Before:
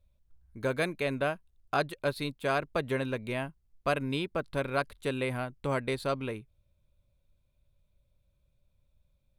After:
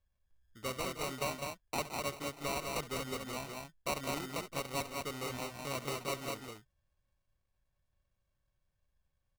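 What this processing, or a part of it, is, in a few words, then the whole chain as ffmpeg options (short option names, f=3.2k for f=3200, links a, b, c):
crushed at another speed: -af "lowpass=7.8k,asetrate=35280,aresample=44100,acrusher=samples=33:mix=1:aa=0.000001,asetrate=55125,aresample=44100,tiltshelf=f=810:g=-4,aecho=1:1:69|168|203:0.178|0.251|0.668,volume=-8dB"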